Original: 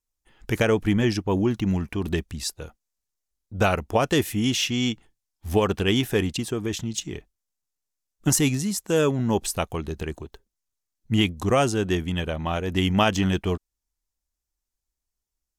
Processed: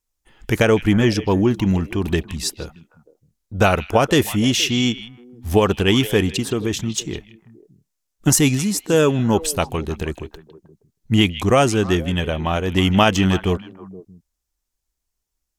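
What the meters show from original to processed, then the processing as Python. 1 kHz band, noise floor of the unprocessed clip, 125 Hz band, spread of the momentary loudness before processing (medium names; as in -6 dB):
+5.5 dB, -85 dBFS, +5.5 dB, 11 LU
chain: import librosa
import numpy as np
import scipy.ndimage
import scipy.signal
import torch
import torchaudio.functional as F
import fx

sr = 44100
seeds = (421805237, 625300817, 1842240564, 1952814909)

y = fx.echo_stepped(x, sr, ms=157, hz=2900.0, octaves=-1.4, feedback_pct=70, wet_db=-11)
y = F.gain(torch.from_numpy(y), 5.5).numpy()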